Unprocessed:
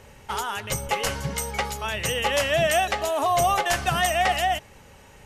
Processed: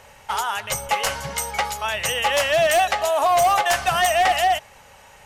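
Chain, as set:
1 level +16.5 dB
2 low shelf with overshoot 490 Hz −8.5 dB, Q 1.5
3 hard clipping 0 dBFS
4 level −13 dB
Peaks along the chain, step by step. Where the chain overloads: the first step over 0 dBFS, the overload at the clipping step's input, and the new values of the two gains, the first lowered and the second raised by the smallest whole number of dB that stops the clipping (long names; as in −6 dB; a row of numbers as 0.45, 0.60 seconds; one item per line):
+6.5, +8.0, 0.0, −13.0 dBFS
step 1, 8.0 dB
step 1 +8.5 dB, step 4 −5 dB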